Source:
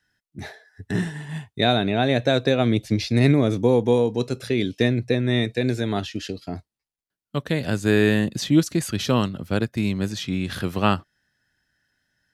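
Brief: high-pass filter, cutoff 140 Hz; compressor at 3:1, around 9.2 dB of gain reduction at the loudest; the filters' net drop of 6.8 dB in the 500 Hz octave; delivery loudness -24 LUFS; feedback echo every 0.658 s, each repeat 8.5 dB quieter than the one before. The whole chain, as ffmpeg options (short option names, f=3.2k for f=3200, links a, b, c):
-af "highpass=140,equalizer=f=500:t=o:g=-8.5,acompressor=threshold=-28dB:ratio=3,aecho=1:1:658|1316|1974|2632:0.376|0.143|0.0543|0.0206,volume=7.5dB"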